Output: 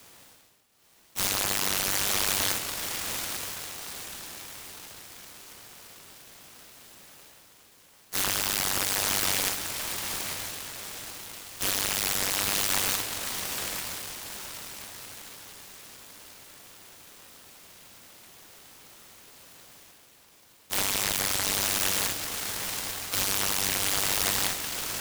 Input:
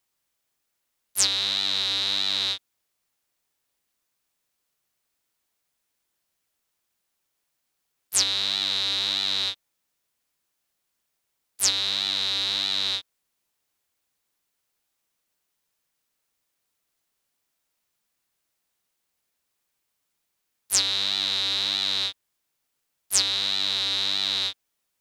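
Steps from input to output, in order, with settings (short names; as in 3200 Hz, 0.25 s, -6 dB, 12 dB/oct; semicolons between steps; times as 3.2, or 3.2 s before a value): rattling part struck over -46 dBFS, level -10 dBFS; HPF 72 Hz 24 dB/oct; high shelf 11000 Hz -8 dB; reverse; upward compressor, threshold -30 dBFS; reverse; limiter -16 dBFS, peak gain reduction 10 dB; on a send: diffused feedback echo 0.896 s, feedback 47%, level -6 dB; on the sum: noise-modulated delay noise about 2200 Hz, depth 0.2 ms; gain +1.5 dB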